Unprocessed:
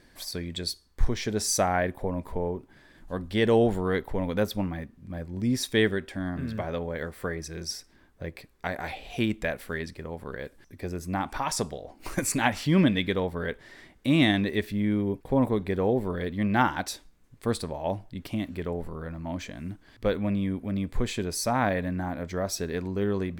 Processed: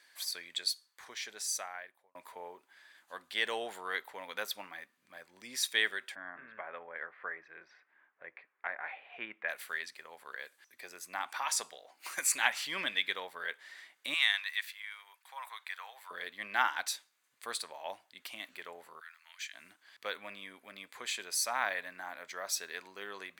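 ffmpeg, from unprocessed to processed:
ffmpeg -i in.wav -filter_complex "[0:a]asplit=3[link_01][link_02][link_03];[link_01]afade=type=out:start_time=6.14:duration=0.02[link_04];[link_02]lowpass=frequency=2100:width=0.5412,lowpass=frequency=2100:width=1.3066,afade=type=in:start_time=6.14:duration=0.02,afade=type=out:start_time=9.48:duration=0.02[link_05];[link_03]afade=type=in:start_time=9.48:duration=0.02[link_06];[link_04][link_05][link_06]amix=inputs=3:normalize=0,asettb=1/sr,asplit=3[link_07][link_08][link_09];[link_07]atrim=end=14.144[link_10];[link_08]atrim=start=14.14:end=16.11,asetpts=PTS-STARTPTS,afade=type=in:duration=0.004:curve=qsin,afade=type=out:start_time=1.966:duration=0.004:curve=qsin,highpass=frequency=960:width=0.5412,highpass=frequency=960:width=1.3066[link_11];[link_09]atrim=start=16.106[link_12];[link_10][link_11]acrossfade=duration=0.004:curve1=hsin:curve2=qsin[link_13];[link_13][link_12]acrossfade=duration=0.004:curve1=qsin:curve2=hsin,asplit=3[link_14][link_15][link_16];[link_14]afade=type=out:start_time=18.99:duration=0.02[link_17];[link_15]highpass=frequency=1500:width=0.5412,highpass=frequency=1500:width=1.3066,afade=type=in:start_time=18.99:duration=0.02,afade=type=out:start_time=19.53:duration=0.02[link_18];[link_16]afade=type=in:start_time=19.53:duration=0.02[link_19];[link_17][link_18][link_19]amix=inputs=3:normalize=0,asplit=2[link_20][link_21];[link_20]atrim=end=2.15,asetpts=PTS-STARTPTS,afade=type=out:start_time=0.64:duration=1.51[link_22];[link_21]atrim=start=2.15,asetpts=PTS-STARTPTS,afade=type=in:duration=0.004:curve=hsin[link_23];[link_22][link_23]concat=n=2:v=0:a=1,highpass=1300,bandreject=frequency=5400:width=15" out.wav

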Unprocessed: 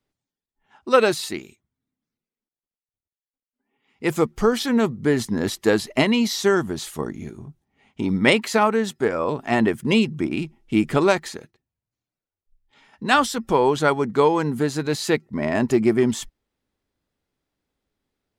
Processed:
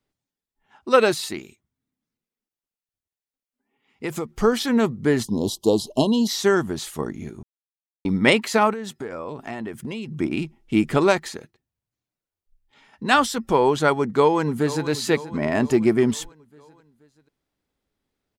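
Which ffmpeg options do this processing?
ffmpeg -i in.wav -filter_complex "[0:a]asettb=1/sr,asplit=3[link_01][link_02][link_03];[link_01]atrim=end=1.184[link_04];[link_02]atrim=start=1.18:end=4.31,asetpts=PTS-STARTPTS,afade=type=in:duration=0.004:curve=qsin,afade=type=out:start_time=3.126:duration=0.004:curve=qsin,acompressor=threshold=-23dB:ratio=6:attack=3.2:release=140:knee=1:detection=peak[link_05];[link_03]atrim=start=4.306[link_06];[link_04][link_05]acrossfade=duration=0.004:curve1=hsin:curve2=qsin[link_07];[link_07][link_06]acrossfade=duration=0.004:curve1=qsin:curve2=hsin,asplit=3[link_08][link_09][link_10];[link_08]afade=type=out:start_time=5.23:duration=0.02[link_11];[link_09]asuperstop=centerf=1800:order=12:qfactor=0.91,afade=type=in:start_time=5.23:duration=0.02,afade=type=out:start_time=6.27:duration=0.02[link_12];[link_10]afade=type=in:start_time=6.27:duration=0.02[link_13];[link_11][link_12][link_13]amix=inputs=3:normalize=0,asettb=1/sr,asplit=3[link_14][link_15][link_16];[link_14]atrim=end=8.734[link_17];[link_15]atrim=start=8.73:end=10.16,asetpts=PTS-STARTPTS,afade=type=in:duration=0.004:curve=qsin,afade=type=out:start_time=1.426:duration=0.004:curve=qsin,acompressor=threshold=-28dB:ratio=6:attack=3.2:release=140:knee=1:detection=peak[link_18];[link_16]atrim=start=10.156[link_19];[link_17][link_18]acrossfade=duration=0.004:curve1=hsin:curve2=qsin[link_20];[link_20][link_19]acrossfade=duration=0.004:curve1=qsin:curve2=hsin,asplit=2[link_21][link_22];[link_22]afade=type=in:start_time=13.99:duration=0.01,afade=type=out:start_time=14.88:duration=0.01,aecho=0:1:480|960|1440|1920|2400:0.188365|0.103601|0.0569804|0.0313392|0.0172366[link_23];[link_21][link_23]amix=inputs=2:normalize=0,asplit=3[link_24][link_25][link_26];[link_24]atrim=end=7.43,asetpts=PTS-STARTPTS,afade=type=out:start_time=7.426:duration=0.004:curve=hsin[link_27];[link_25]atrim=start=7.43:end=8.05,asetpts=PTS-STARTPTS,volume=0[link_28];[link_26]atrim=start=8.05,asetpts=PTS-STARTPTS,afade=type=in:duration=0.004:curve=hsin[link_29];[link_27][link_28][link_29]concat=n=3:v=0:a=1" out.wav

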